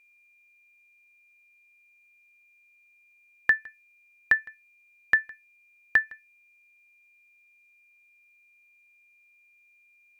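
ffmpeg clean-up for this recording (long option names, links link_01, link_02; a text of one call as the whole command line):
ffmpeg -i in.wav -af "bandreject=frequency=2400:width=30" out.wav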